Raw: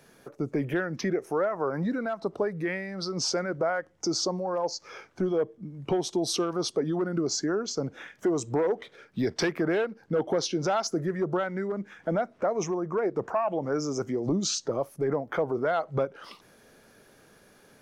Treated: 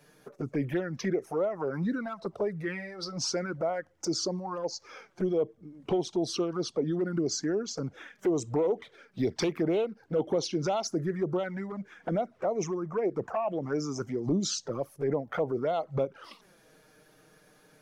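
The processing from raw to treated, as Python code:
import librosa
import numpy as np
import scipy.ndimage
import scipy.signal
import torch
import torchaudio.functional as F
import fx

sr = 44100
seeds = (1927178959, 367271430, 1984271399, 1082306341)

y = fx.env_flanger(x, sr, rest_ms=7.1, full_db=-22.5)
y = fx.air_absorb(y, sr, metres=59.0, at=(6.02, 6.91))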